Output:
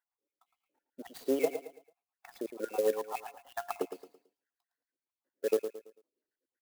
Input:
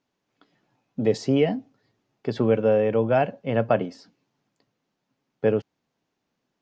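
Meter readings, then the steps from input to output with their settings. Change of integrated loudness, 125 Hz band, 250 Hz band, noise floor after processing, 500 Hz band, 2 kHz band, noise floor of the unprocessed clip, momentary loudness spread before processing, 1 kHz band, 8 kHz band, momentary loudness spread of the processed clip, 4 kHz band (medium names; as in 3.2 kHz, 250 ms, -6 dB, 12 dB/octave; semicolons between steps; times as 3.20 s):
-11.5 dB, under -30 dB, -15.5 dB, under -85 dBFS, -10.5 dB, -12.0 dB, -80 dBFS, 13 LU, -11.0 dB, no reading, 18 LU, -11.0 dB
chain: random holes in the spectrogram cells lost 69%; peaking EQ 650 Hz -4.5 dB 0.3 oct; spectral noise reduction 11 dB; high-pass 350 Hz 24 dB/octave; treble shelf 2.6 kHz -9 dB; feedback comb 700 Hz, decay 0.22 s, harmonics all, mix 50%; tremolo 7.6 Hz, depth 61%; feedback delay 111 ms, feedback 34%, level -9.5 dB; sampling jitter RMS 0.038 ms; trim +6 dB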